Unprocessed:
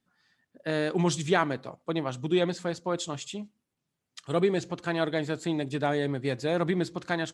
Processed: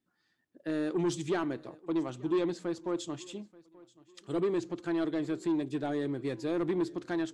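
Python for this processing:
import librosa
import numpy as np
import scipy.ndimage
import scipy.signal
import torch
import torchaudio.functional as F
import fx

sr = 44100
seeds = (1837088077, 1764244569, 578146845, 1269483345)

y = fx.peak_eq(x, sr, hz=330.0, db=12.0, octaves=0.49)
y = 10.0 ** (-16.0 / 20.0) * np.tanh(y / 10.0 ** (-16.0 / 20.0))
y = fx.echo_feedback(y, sr, ms=882, feedback_pct=31, wet_db=-23.0)
y = y * librosa.db_to_amplitude(-7.5)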